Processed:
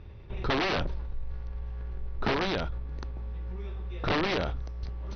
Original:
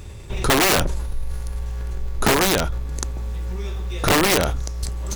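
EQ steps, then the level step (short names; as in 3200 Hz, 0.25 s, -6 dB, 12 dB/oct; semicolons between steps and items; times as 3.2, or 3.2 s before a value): dynamic EQ 4300 Hz, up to +7 dB, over -36 dBFS, Q 1.1; brick-wall FIR low-pass 6200 Hz; air absorption 300 m; -9.0 dB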